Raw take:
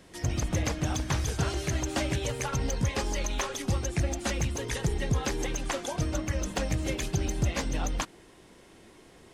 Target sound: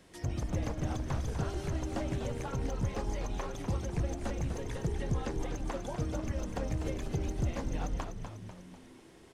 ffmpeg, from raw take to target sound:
-filter_complex "[0:a]acrossover=split=1300[s0][s1];[s1]acompressor=threshold=0.00562:ratio=6[s2];[s0][s2]amix=inputs=2:normalize=0,asettb=1/sr,asplit=3[s3][s4][s5];[s3]atrim=end=4.874[s6];[s4]atrim=start=4.87:end=5.35,asetpts=PTS-STARTPTS,afade=t=in:d=0.004:c=qsin,afade=t=out:st=0.476:d=0.004:c=qsin,lowpass=f=11000:w=0.5412,lowpass=f=11000:w=1.3066[s7];[s5]atrim=start=5.346[s8];[s6][s7]acrossfade=d=0.004:c1=hsin:c2=qsin[s9];[s9][s8]acrossfade=d=0.004:c1=qsin:c2=hsin,asplit=7[s10][s11][s12][s13][s14][s15][s16];[s11]adelay=247,afreqshift=-75,volume=0.447[s17];[s12]adelay=494,afreqshift=-150,volume=0.237[s18];[s13]adelay=741,afreqshift=-225,volume=0.126[s19];[s14]adelay=988,afreqshift=-300,volume=0.0668[s20];[s15]adelay=1235,afreqshift=-375,volume=0.0351[s21];[s16]adelay=1482,afreqshift=-450,volume=0.0186[s22];[s10][s17][s18][s19][s20][s21][s22]amix=inputs=7:normalize=0,volume=0.562"

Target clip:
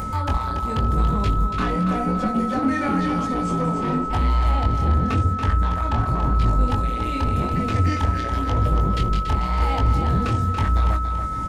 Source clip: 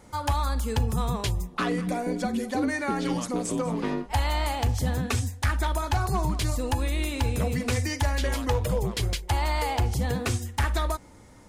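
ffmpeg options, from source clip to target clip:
-filter_complex "[0:a]asettb=1/sr,asplit=3[s0][s1][s2];[s0]atrim=end=4.494[s3];[s1]atrim=start=4.49:end=6.61,asetpts=PTS-STARTPTS,afade=t=in:d=0.004:c=qsin,afade=t=out:st=2.116:d=0.004:c=qsin,aemphasis=mode=reproduction:type=cd[s4];[s2]atrim=start=6.606[s5];[s3][s4]acrossfade=d=0.004:c1=hsin:c2=qsin[s6];[s6][s5]acrossfade=d=0.004:c1=qsin:c2=hsin,acrossover=split=5300[s7][s8];[s8]acompressor=threshold=0.00447:ratio=4:attack=1:release=60[s9];[s7][s9]amix=inputs=2:normalize=0,bass=f=250:g=10,treble=f=4000:g=-4,acompressor=mode=upward:threshold=0.0631:ratio=2.5,asoftclip=type=tanh:threshold=0.0794,flanger=delay=18.5:depth=7.4:speed=0.92,aeval=exprs='val(0)+0.0178*sin(2*PI*1300*n/s)':c=same,aecho=1:1:283|566|849|1132:0.422|0.164|0.0641|0.025,volume=2.11"

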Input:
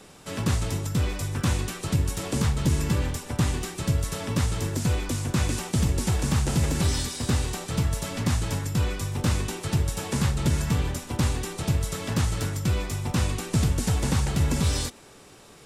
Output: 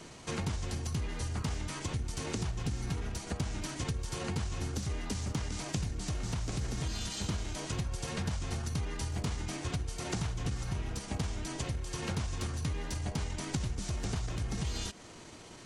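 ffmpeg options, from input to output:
-af "acompressor=threshold=0.0251:ratio=6,asetrate=36028,aresample=44100,atempo=1.22405"

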